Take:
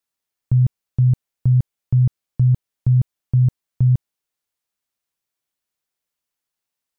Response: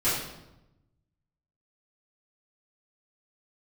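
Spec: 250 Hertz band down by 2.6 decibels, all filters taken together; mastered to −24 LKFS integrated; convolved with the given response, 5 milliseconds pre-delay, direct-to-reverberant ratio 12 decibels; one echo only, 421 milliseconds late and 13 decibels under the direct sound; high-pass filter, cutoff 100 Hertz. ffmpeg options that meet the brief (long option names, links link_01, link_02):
-filter_complex "[0:a]highpass=100,equalizer=frequency=250:width_type=o:gain=-5.5,aecho=1:1:421:0.224,asplit=2[link_01][link_02];[1:a]atrim=start_sample=2205,adelay=5[link_03];[link_02][link_03]afir=irnorm=-1:irlink=0,volume=-24dB[link_04];[link_01][link_04]amix=inputs=2:normalize=0,volume=-3.5dB"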